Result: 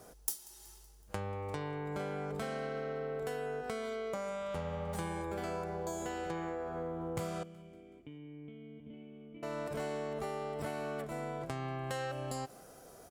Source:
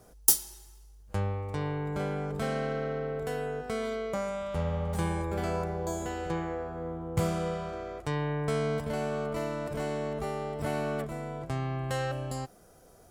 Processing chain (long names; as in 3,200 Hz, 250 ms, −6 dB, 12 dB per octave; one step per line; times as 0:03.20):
low-shelf EQ 130 Hz −11 dB
downward compressor 6 to 1, threshold −39 dBFS, peak gain reduction 21 dB
0:07.43–0:09.43: formant resonators in series i
on a send: repeating echo 187 ms, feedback 55%, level −22.5 dB
on the sum: level +3.5 dB